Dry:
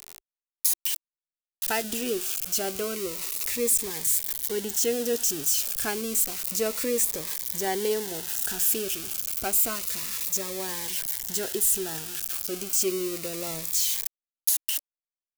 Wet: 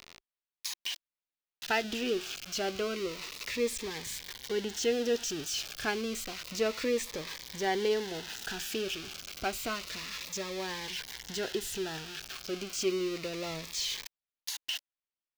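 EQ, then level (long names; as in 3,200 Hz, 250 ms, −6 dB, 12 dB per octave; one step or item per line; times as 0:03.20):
high-frequency loss of the air 240 metres
high-shelf EQ 2,200 Hz +10.5 dB
−2.0 dB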